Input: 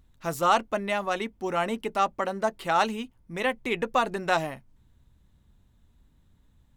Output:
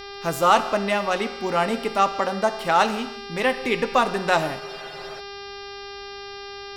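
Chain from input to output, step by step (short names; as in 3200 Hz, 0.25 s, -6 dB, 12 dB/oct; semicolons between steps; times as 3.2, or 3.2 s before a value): buzz 400 Hz, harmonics 14, -43 dBFS -3 dB/oct; non-linear reverb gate 0.36 s falling, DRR 10 dB; spectral freeze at 4.61, 0.58 s; gain +4.5 dB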